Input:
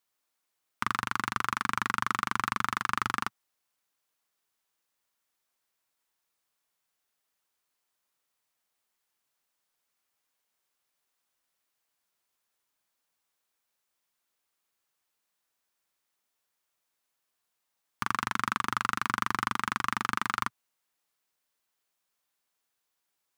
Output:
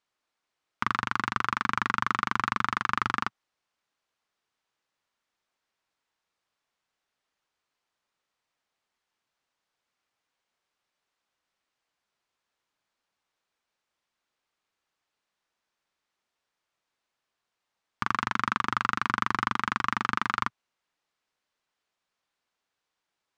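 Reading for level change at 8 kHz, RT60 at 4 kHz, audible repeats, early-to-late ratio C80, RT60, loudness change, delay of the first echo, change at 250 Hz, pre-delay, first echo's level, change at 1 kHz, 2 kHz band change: −5.5 dB, no reverb audible, no echo audible, no reverb audible, no reverb audible, +2.0 dB, no echo audible, +3.0 dB, no reverb audible, no echo audible, +2.5 dB, +2.0 dB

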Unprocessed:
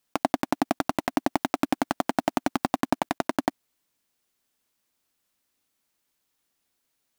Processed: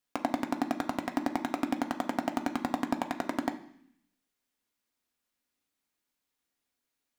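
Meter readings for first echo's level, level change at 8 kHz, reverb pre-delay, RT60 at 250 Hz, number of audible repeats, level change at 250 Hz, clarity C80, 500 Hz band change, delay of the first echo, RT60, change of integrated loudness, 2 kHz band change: no echo audible, −8.5 dB, 3 ms, 0.95 s, no echo audible, −4.0 dB, 15.5 dB, −6.5 dB, no echo audible, 0.70 s, −5.0 dB, −5.5 dB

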